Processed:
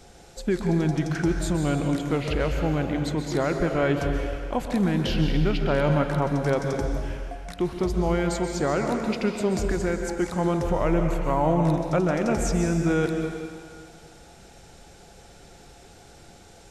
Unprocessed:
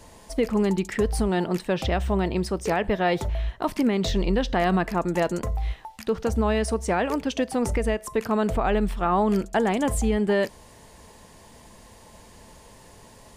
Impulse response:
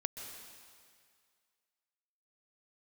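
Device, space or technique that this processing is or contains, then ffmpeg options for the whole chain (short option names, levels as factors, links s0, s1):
slowed and reverbed: -filter_complex "[0:a]asetrate=35280,aresample=44100[s0];[1:a]atrim=start_sample=2205[s1];[s0][s1]afir=irnorm=-1:irlink=0"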